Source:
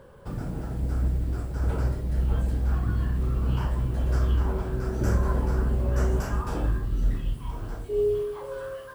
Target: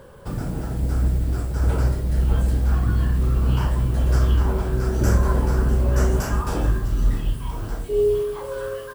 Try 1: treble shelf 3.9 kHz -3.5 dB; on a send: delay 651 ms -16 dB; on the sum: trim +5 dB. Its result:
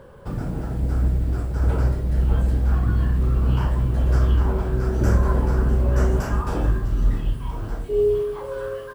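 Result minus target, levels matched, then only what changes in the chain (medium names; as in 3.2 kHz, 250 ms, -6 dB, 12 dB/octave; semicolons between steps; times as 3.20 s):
8 kHz band -7.5 dB
change: treble shelf 3.9 kHz +6 dB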